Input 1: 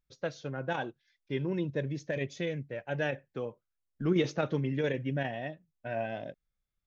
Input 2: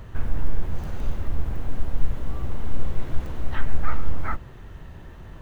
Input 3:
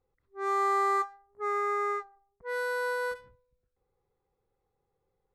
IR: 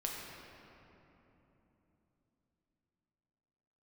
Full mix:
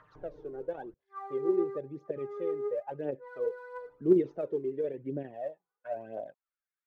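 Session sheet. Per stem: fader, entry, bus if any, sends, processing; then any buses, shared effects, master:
+2.0 dB, 0.00 s, no send, none
-4.5 dB, 0.00 s, muted 0.94–3.78 s, no send, comb 6.6 ms, depth 87%; auto duck -21 dB, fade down 1.50 s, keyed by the first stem
-5.5 dB, 0.75 s, send -15.5 dB, none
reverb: on, RT60 3.4 s, pre-delay 6 ms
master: auto-wah 390–1700 Hz, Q 3.4, down, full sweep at -28 dBFS; phaser 0.97 Hz, delay 2.9 ms, feedback 61%

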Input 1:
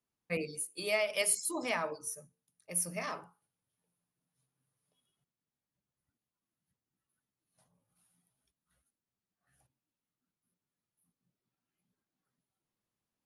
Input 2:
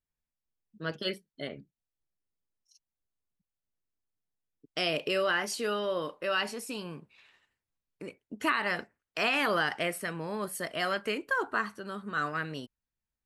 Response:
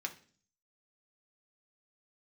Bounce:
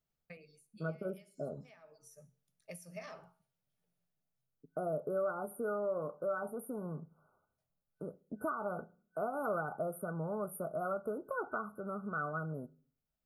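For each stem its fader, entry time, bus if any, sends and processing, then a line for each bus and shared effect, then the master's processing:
+3.0 dB, 0.00 s, send -22 dB, compression 12:1, threshold -42 dBFS, peak gain reduction 17.5 dB; feedback comb 130 Hz, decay 0.44 s, harmonics odd, mix 50%; auto duck -19 dB, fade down 0.60 s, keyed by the second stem
-0.5 dB, 0.00 s, send -12 dB, FFT band-reject 1.5–8.9 kHz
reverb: on, RT60 0.45 s, pre-delay 3 ms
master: graphic EQ with 31 bands 160 Hz +6 dB, 315 Hz -6 dB, 630 Hz +6 dB, 1 kHz -7 dB, 10 kHz -10 dB; compression 2:1, threshold -38 dBFS, peak gain reduction 9 dB

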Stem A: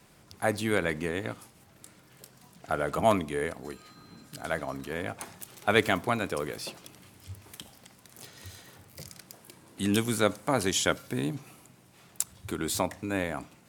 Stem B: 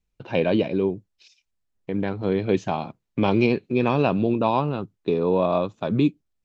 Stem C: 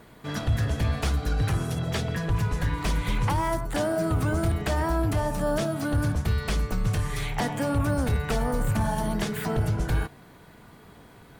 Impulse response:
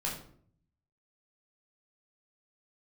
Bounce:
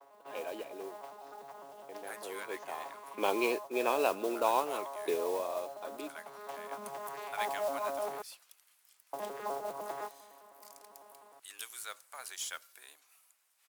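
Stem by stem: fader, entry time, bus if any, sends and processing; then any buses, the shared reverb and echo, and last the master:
-15.0 dB, 1.65 s, no send, high-pass 1.1 kHz 12 dB/octave; treble shelf 7.4 kHz +10.5 dB
2.59 s -18 dB -> 3.23 s -7 dB -> 5.12 s -7 dB -> 5.53 s -16.5 dB, 0.00 s, no send, none
-5.0 dB, 0.00 s, muted 8.22–9.13 s, no send, vocoder on a broken chord bare fifth, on C#3, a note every 101 ms; high-order bell 820 Hz +12 dB 1.1 oct; peak limiter -21 dBFS, peak gain reduction 9.5 dB; auto duck -9 dB, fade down 0.60 s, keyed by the second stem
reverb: none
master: high-pass 380 Hz 24 dB/octave; peaking EQ 1.4 kHz +2 dB; modulation noise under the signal 17 dB

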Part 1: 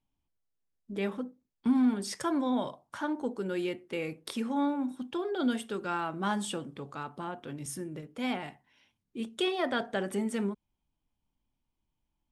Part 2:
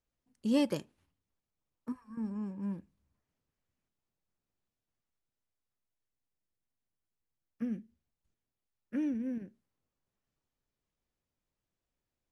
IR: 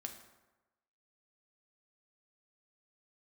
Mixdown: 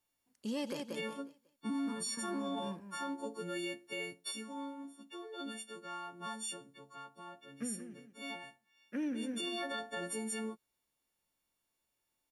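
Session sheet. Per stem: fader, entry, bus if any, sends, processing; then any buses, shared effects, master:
3.86 s -5.5 dB -> 4.65 s -13 dB -> 8.74 s -13 dB -> 9.06 s -6 dB, 0.00 s, no send, no echo send, partials quantised in pitch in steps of 4 st
+2.5 dB, 0.00 s, no send, echo send -10 dB, high-pass 43 Hz; bass shelf 330 Hz -7 dB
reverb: none
echo: feedback delay 182 ms, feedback 33%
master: bass shelf 170 Hz -8.5 dB; peak limiter -30 dBFS, peak gain reduction 9.5 dB

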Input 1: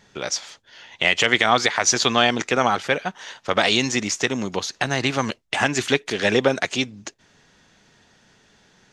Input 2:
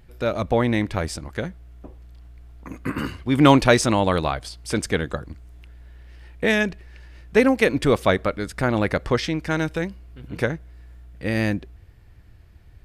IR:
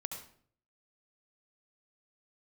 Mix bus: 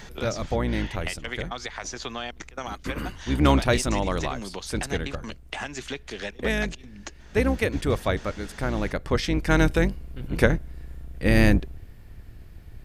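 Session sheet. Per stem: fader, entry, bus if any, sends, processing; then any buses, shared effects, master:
-6.0 dB, 0.00 s, no send, compression 1.5:1, threshold -37 dBFS, peak gain reduction 9.5 dB; trance gate "x.xxxxxxxxx.x.x" 169 bpm -24 dB; three bands compressed up and down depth 70%
+3.0 dB, 0.00 s, no send, octave divider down 2 oct, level +1 dB; treble shelf 10 kHz +8 dB; auto duck -10 dB, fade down 0.35 s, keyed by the first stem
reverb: none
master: none

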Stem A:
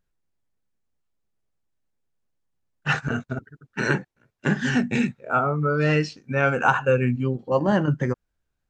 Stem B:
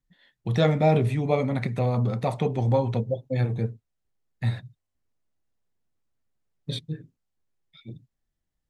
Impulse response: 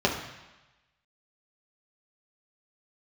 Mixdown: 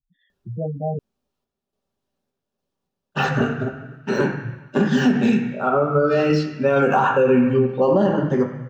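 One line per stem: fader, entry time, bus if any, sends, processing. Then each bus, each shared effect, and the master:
+2.0 dB, 0.30 s, send -9 dB, de-esser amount 90%; bass shelf 120 Hz -8.5 dB; random-step tremolo
-5.0 dB, 0.00 s, muted 0.99–3.25 s, no send, spectral gate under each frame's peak -10 dB strong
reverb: on, RT60 1.1 s, pre-delay 3 ms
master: peak limiter -8.5 dBFS, peak gain reduction 10.5 dB

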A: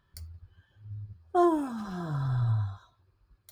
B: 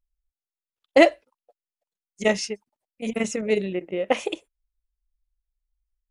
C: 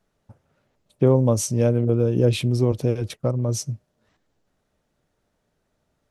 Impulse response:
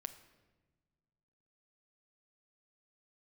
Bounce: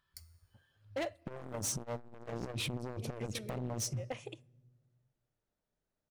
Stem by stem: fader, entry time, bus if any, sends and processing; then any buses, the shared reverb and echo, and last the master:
-1.5 dB, 0.00 s, bus A, no send, tilt shelf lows -6.5 dB, about 890 Hz; feedback comb 160 Hz, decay 1.2 s, mix 60%
-19.0 dB, 0.00 s, no bus, send -17.5 dB, none
-3.0 dB, 0.25 s, bus A, send -7.5 dB, gate -35 dBFS, range -16 dB; compression 6:1, threshold -19 dBFS, peak gain reduction 8 dB
bus A: 0.0 dB, saturation -26 dBFS, distortion -10 dB; compression 2:1, threshold -37 dBFS, peak gain reduction 5 dB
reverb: on, pre-delay 6 ms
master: overload inside the chain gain 31.5 dB; transformer saturation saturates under 110 Hz

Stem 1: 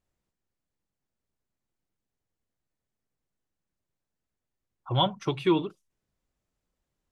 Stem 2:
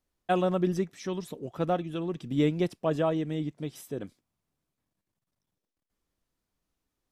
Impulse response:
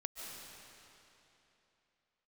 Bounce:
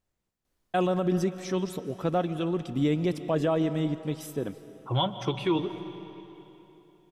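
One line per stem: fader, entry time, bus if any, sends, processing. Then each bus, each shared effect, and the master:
-2.0 dB, 0.00 s, send -6.5 dB, none
+2.0 dB, 0.45 s, send -9.5 dB, none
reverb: on, RT60 3.1 s, pre-delay 105 ms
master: peak limiter -17 dBFS, peak gain reduction 6 dB

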